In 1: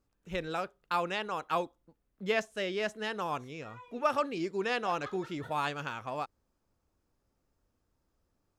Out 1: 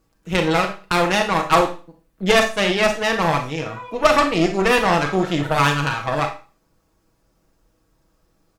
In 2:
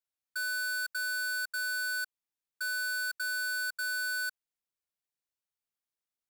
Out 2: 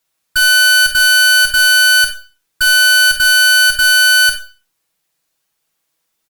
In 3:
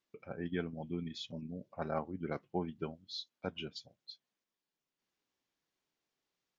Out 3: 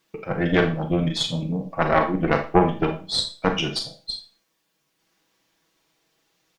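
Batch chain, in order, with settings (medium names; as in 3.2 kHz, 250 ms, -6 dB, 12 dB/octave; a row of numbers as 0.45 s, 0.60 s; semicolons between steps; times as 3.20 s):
comb 6.2 ms, depth 57%; Chebyshev shaper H 8 -17 dB, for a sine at -14 dBFS; Schroeder reverb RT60 0.35 s, combs from 28 ms, DRR 5 dB; peak normalisation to -2 dBFS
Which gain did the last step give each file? +12.5 dB, +20.0 dB, +16.5 dB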